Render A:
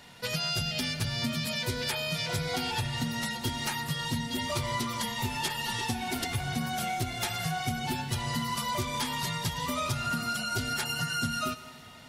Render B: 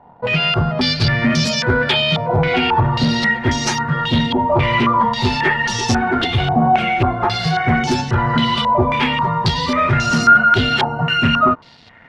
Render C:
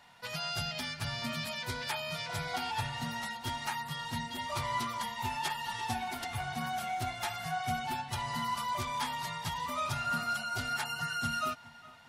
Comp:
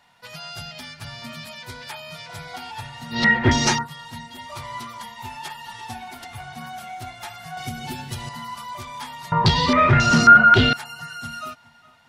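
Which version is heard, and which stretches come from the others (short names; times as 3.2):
C
3.18–3.8 from B, crossfade 0.16 s
7.57–8.29 from A
9.32–10.73 from B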